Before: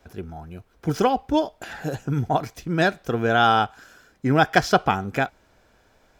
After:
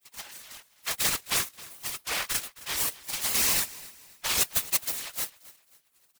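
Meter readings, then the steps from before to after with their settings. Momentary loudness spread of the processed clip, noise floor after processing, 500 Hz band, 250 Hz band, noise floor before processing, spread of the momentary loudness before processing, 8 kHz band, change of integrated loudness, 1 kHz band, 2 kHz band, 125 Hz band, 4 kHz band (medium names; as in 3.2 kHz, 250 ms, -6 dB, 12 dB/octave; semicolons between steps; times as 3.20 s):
18 LU, -66 dBFS, -21.0 dB, -23.0 dB, -61 dBFS, 14 LU, +14.5 dB, -5.0 dB, -18.5 dB, -8.5 dB, -22.0 dB, +1.0 dB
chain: block-companded coder 3-bit; spectral gate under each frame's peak -30 dB weak; in parallel at -11 dB: sample-rate reducer 8.1 kHz; on the sum: whisper effect; on a send: feedback delay 265 ms, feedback 35%, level -19.5 dB; on the sum: warped record 78 rpm, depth 100 cents; trim +7.5 dB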